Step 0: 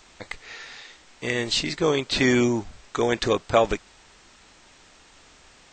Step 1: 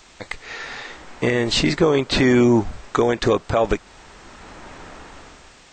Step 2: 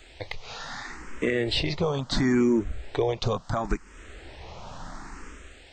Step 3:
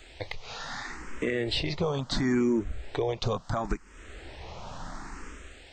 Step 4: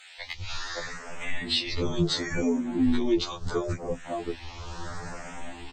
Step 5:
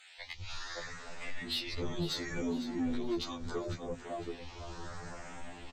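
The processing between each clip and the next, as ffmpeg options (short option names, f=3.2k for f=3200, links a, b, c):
-filter_complex "[0:a]acrossover=split=1800[a][b];[a]dynaudnorm=f=120:g=11:m=14dB[c];[c][b]amix=inputs=2:normalize=0,alimiter=limit=-11.5dB:level=0:latency=1:release=233,volume=4dB"
-filter_complex "[0:a]lowshelf=f=110:g=8.5,acompressor=threshold=-29dB:ratio=1.5,asplit=2[a][b];[b]afreqshift=0.72[c];[a][c]amix=inputs=2:normalize=1"
-af "alimiter=limit=-18dB:level=0:latency=1:release=450"
-filter_complex "[0:a]acrossover=split=230|850[a][b][c];[a]adelay=200[d];[b]adelay=570[e];[d][e][c]amix=inputs=3:normalize=0,acrossover=split=450|3000[f][g][h];[g]acompressor=threshold=-39dB:ratio=6[i];[f][i][h]amix=inputs=3:normalize=0,afftfilt=real='re*2*eq(mod(b,4),0)':imag='im*2*eq(mod(b,4),0)':win_size=2048:overlap=0.75,volume=7dB"
-filter_complex "[0:a]asoftclip=type=tanh:threshold=-21dB,asplit=2[a][b];[b]aecho=0:1:503|1006|1509|2012:0.251|0.1|0.0402|0.0161[c];[a][c]amix=inputs=2:normalize=0,volume=-7dB"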